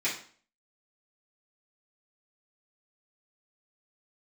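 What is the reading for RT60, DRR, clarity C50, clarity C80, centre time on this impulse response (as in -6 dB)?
0.45 s, -10.5 dB, 6.5 dB, 12.0 dB, 28 ms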